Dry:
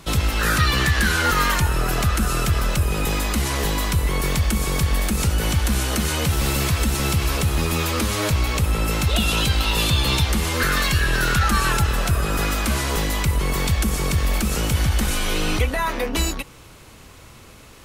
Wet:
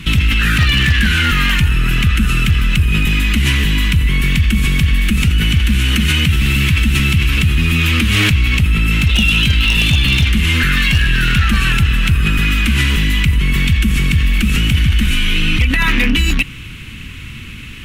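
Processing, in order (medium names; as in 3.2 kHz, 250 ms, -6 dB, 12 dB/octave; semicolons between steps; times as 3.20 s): FFT filter 240 Hz 0 dB, 650 Hz -27 dB, 1.7 kHz -3 dB, 2.8 kHz +5 dB, 4.7 kHz -12 dB; in parallel at -2 dB: compressor with a negative ratio -27 dBFS, ratio -0.5; on the sum: wavefolder -11.5 dBFS; trim +6.5 dB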